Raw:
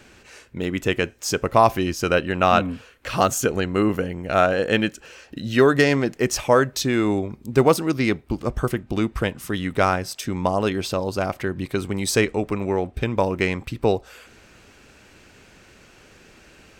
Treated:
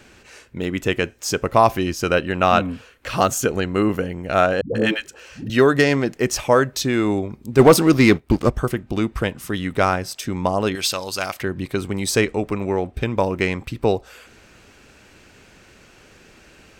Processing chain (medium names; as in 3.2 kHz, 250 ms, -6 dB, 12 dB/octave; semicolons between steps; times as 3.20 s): 4.61–5.50 s: phase dispersion highs, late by 140 ms, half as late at 330 Hz; 7.59–8.50 s: waveshaping leveller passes 2; 10.75–11.41 s: tilt shelf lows -10 dB, about 1.1 kHz; trim +1 dB